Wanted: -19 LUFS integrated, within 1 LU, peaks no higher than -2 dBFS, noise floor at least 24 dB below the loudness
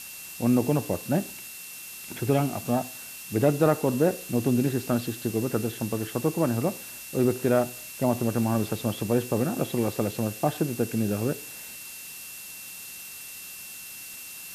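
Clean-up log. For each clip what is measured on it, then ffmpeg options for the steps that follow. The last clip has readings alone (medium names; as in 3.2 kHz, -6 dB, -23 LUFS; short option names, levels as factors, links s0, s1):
steady tone 2.7 kHz; tone level -46 dBFS; noise floor -41 dBFS; noise floor target -52 dBFS; loudness -27.5 LUFS; peak level -8.0 dBFS; loudness target -19.0 LUFS
-> -af "bandreject=f=2700:w=30"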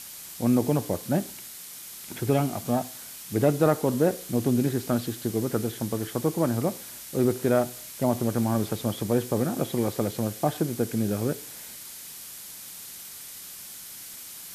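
steady tone not found; noise floor -42 dBFS; noise floor target -51 dBFS
-> -af "afftdn=nr=9:nf=-42"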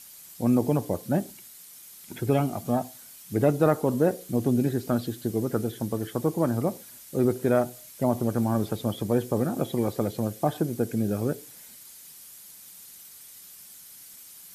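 noise floor -48 dBFS; noise floor target -51 dBFS
-> -af "afftdn=nr=6:nf=-48"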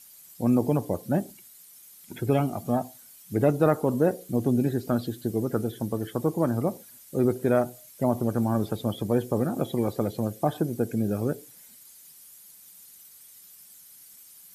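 noise floor -51 dBFS; loudness -27.0 LUFS; peak level -8.5 dBFS; loudness target -19.0 LUFS
-> -af "volume=2.51,alimiter=limit=0.794:level=0:latency=1"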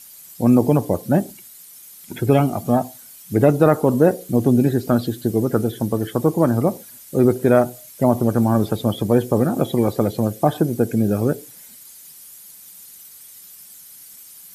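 loudness -19.0 LUFS; peak level -2.0 dBFS; noise floor -43 dBFS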